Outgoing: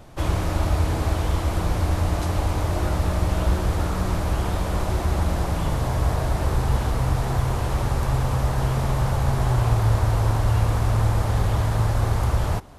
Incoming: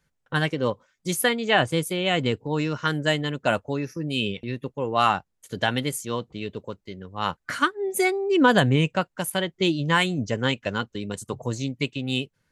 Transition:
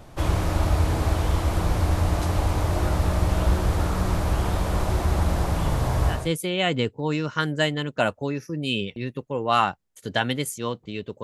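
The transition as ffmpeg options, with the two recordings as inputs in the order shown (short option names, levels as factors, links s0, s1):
-filter_complex "[0:a]apad=whole_dur=11.23,atrim=end=11.23,atrim=end=6.32,asetpts=PTS-STARTPTS[s0];[1:a]atrim=start=1.53:end=6.7,asetpts=PTS-STARTPTS[s1];[s0][s1]acrossfade=d=0.26:c1=tri:c2=tri"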